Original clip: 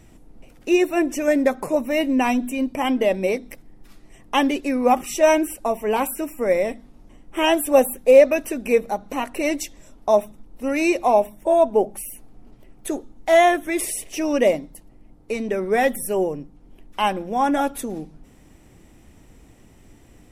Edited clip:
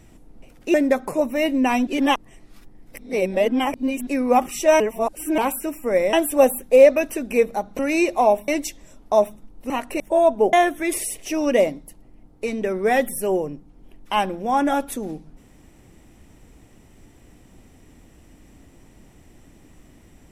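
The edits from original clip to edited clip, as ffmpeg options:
-filter_complex "[0:a]asplit=12[a][b][c][d][e][f][g][h][i][j][k][l];[a]atrim=end=0.742[m];[b]atrim=start=1.288:end=2.422[n];[c]atrim=start=2.418:end=4.622,asetpts=PTS-STARTPTS,areverse[o];[d]atrim=start=4.618:end=5.352[p];[e]atrim=start=5.348:end=5.932,asetpts=PTS-STARTPTS,areverse[q];[f]atrim=start=5.928:end=6.682[r];[g]atrim=start=7.478:end=9.142[s];[h]atrim=start=10.658:end=11.352[t];[i]atrim=start=9.438:end=10.662[u];[j]atrim=start=9.138:end=9.442[v];[k]atrim=start=11.348:end=11.882[w];[l]atrim=start=13.398[x];[m][n]acrossfade=d=0.004:c1=hsin:c2=hsin[y];[y][o]acrossfade=d=0.004:c1=hsin:c2=hsin[z];[z][p]acrossfade=d=0.004:c1=hsin:c2=hsin[aa];[aa][q]acrossfade=d=0.004:c1=hsin:c2=hsin[ab];[ab][r]acrossfade=d=0.004:c1=hsin:c2=hsin[ac];[ac][s]acrossfade=d=0.004:c1=hsin:c2=hsin[ad];[ad][t]acrossfade=d=0.004:c1=hsin:c2=hsin[ae];[ae][u]acrossfade=d=0.004:c1=hsin:c2=hsin[af];[af][v]acrossfade=d=0.004:c1=hsin:c2=hsin[ag];[ag][w]acrossfade=d=0.004:c1=hsin:c2=hsin[ah];[ah][x]acrossfade=d=0.004:c1=hsin:c2=hsin"

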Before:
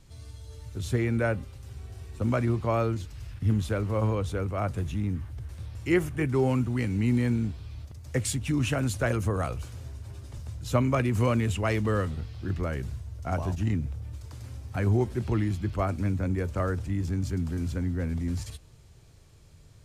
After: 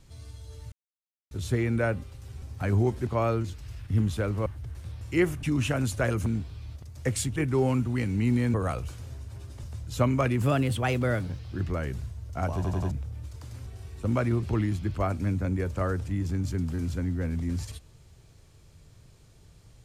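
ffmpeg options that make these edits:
-filter_complex "[0:a]asplit=17[a][b][c][d][e][f][g][h][i][j][k][l][m][n][o][p][q];[a]atrim=end=0.72,asetpts=PTS-STARTPTS,afade=t=out:st=0.716:d=0.004:c=hsin,apad=pad_dur=0.59[r];[b]atrim=start=0.72:end=1.832,asetpts=PTS-STARTPTS,afade=t=in:d=0.004:c=hsin[s];[c]atrim=start=14.558:end=15.212[t];[d]atrim=start=2.588:end=3.982[u];[e]atrim=start=5.198:end=6.172[v];[f]atrim=start=8.448:end=9.282[w];[g]atrim=start=7.348:end=8.452[x];[h]atrim=start=6.168:end=7.352[y];[i]atrim=start=9.278:end=11.164[z];[j]atrim=start=11.16:end=12.29,asetpts=PTS-STARTPTS,asetrate=51156,aresample=44100,atrim=end_sample=42959,asetpts=PTS-STARTPTS[aa];[k]atrim=start=12.286:end=13.542[ab];[l]atrim=start=13.448:end=13.542[ac];[m]atrim=start=13.448:end=13.542[ad];[n]atrim=start=13.448:end=13.542[ae];[o]atrim=start=13.808:end=14.562[af];[p]atrim=start=1.828:end=2.592[ag];[q]atrim=start=15.208[ah];[r][s]concat=n=2:v=0:a=1[ai];[ai][t]acrossfade=d=0.004:c1=hsin:c2=hsin[aj];[aj][u]acrossfade=d=0.004:c1=hsin:c2=hsin[ak];[ak][v]acrossfade=d=0.004:c1=hsin:c2=hsin[al];[al][w]acrossfade=d=0.004:c1=hsin:c2=hsin[am];[am][x]acrossfade=d=0.004:c1=hsin:c2=hsin[an];[an][y]acrossfade=d=0.004:c1=hsin:c2=hsin[ao];[ao][z]acrossfade=d=0.004:c1=hsin:c2=hsin[ap];[ap][aa]acrossfade=d=0.004:c1=hsin:c2=hsin[aq];[aq][ab]acrossfade=d=0.004:c1=hsin:c2=hsin[ar];[ar][ac]acrossfade=d=0.004:c1=hsin:c2=hsin[as];[as][ad]acrossfade=d=0.004:c1=hsin:c2=hsin[at];[at][ae]acrossfade=d=0.004:c1=hsin:c2=hsin[au];[au][af]acrossfade=d=0.004:c1=hsin:c2=hsin[av];[av][ag]acrossfade=d=0.004:c1=hsin:c2=hsin[aw];[aw][ah]acrossfade=d=0.004:c1=hsin:c2=hsin"

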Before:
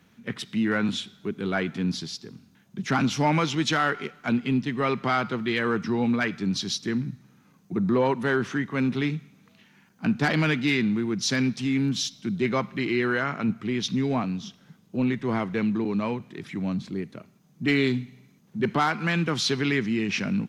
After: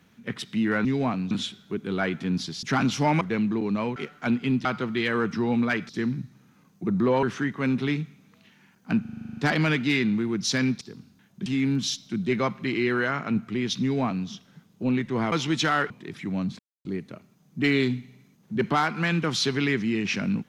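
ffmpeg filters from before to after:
-filter_complex "[0:a]asplit=23[a][b][c][d][e][f][g][h][i][j][k][l][m][n][o][p][q][r][s][t][u][v][w];[a]atrim=end=0.852[x];[b]atrim=start=13.948:end=14.412[y];[c]atrim=start=0.848:end=2.172[z];[d]atrim=start=2.818:end=3.402[aa];[e]atrim=start=15.448:end=16.202[ab];[f]atrim=start=3.978:end=4.672[ac];[g]atrim=start=5.158:end=6.402[ad];[h]atrim=start=6.778:end=8.122[ae];[i]atrim=start=8.368:end=10.192[af];[j]atrim=start=10.148:end=10.192[ag];[k]atrim=start=10.148:end=10.192[ah];[l]atrim=start=10.148:end=10.192[ai];[m]atrim=start=10.148:end=10.192[aj];[n]atrim=start=10.148:end=10.192[ak];[o]atrim=start=10.148:end=10.192[al];[p]atrim=start=10.148:end=10.192[am];[q]atrim=start=10.148:end=10.192[an];[r]atrim=start=10.148:end=11.592[ao];[s]atrim=start=2.168:end=2.822[ap];[t]atrim=start=11.588:end=15.452[aq];[u]atrim=start=3.398:end=3.982[ar];[v]atrim=start=16.198:end=16.89,asetpts=PTS-STARTPTS,afade=t=out:st=0.688:d=0.004:c=hsin,apad=pad_dur=0.26[as];[w]atrim=start=16.89,asetpts=PTS-STARTPTS,afade=t=in:d=0.004:c=hsin[at];[x][y]acrossfade=d=0.004:c1=hsin:c2=hsin[au];[au][z]acrossfade=d=0.004:c1=hsin:c2=hsin[av];[av][aa]acrossfade=d=0.004:c1=hsin:c2=hsin[aw];[aw][ab]acrossfade=d=0.004:c1=hsin:c2=hsin[ax];[ax][ac]acrossfade=d=0.004:c1=hsin:c2=hsin[ay];[ay][ad]acrossfade=d=0.004:c1=hsin:c2=hsin[az];[az][ae]acrossfade=d=0.004:c1=hsin:c2=hsin[ba];[ba][af]acrossfade=d=0.004:c1=hsin:c2=hsin[bb];[bb][ag]acrossfade=d=0.004:c1=hsin:c2=hsin[bc];[bc][ah]acrossfade=d=0.004:c1=hsin:c2=hsin[bd];[bd][ai]acrossfade=d=0.004:c1=hsin:c2=hsin[be];[be][aj]acrossfade=d=0.004:c1=hsin:c2=hsin[bf];[bf][ak]acrossfade=d=0.004:c1=hsin:c2=hsin[bg];[bg][al]acrossfade=d=0.004:c1=hsin:c2=hsin[bh];[bh][am]acrossfade=d=0.004:c1=hsin:c2=hsin[bi];[bi][an]acrossfade=d=0.004:c1=hsin:c2=hsin[bj];[bj][ao]acrossfade=d=0.004:c1=hsin:c2=hsin[bk];[bk][ap]acrossfade=d=0.004:c1=hsin:c2=hsin[bl];[bl][aq]acrossfade=d=0.004:c1=hsin:c2=hsin[bm];[bm][ar]acrossfade=d=0.004:c1=hsin:c2=hsin[bn];[as][at]concat=n=2:v=0:a=1[bo];[bn][bo]acrossfade=d=0.004:c1=hsin:c2=hsin"

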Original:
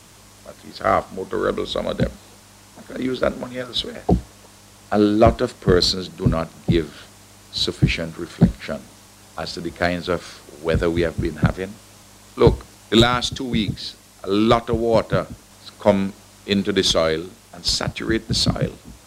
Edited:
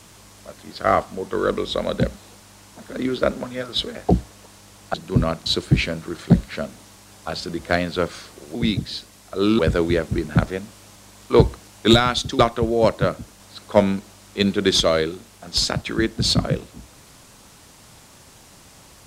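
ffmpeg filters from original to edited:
-filter_complex "[0:a]asplit=6[a][b][c][d][e][f];[a]atrim=end=4.942[g];[b]atrim=start=6.038:end=6.562[h];[c]atrim=start=7.568:end=10.662[i];[d]atrim=start=13.458:end=14.502[j];[e]atrim=start=10.658:end=13.462[k];[f]atrim=start=14.498[l];[g][h]acrossfade=d=0.004:c1=hsin:c2=hsin[m];[m][i]acrossfade=d=0.004:c1=hsin:c2=hsin[n];[n][j]acrossfade=d=0.004:c1=hsin:c2=hsin[o];[o][k]acrossfade=d=0.004:c1=hsin:c2=hsin[p];[p][l]acrossfade=d=0.004:c1=hsin:c2=hsin"

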